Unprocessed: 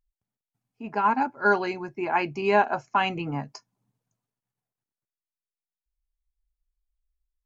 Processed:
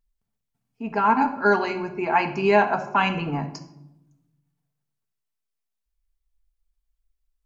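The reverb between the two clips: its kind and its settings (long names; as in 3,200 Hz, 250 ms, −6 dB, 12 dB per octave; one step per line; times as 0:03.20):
rectangular room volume 2,600 cubic metres, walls furnished, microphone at 1.6 metres
level +2.5 dB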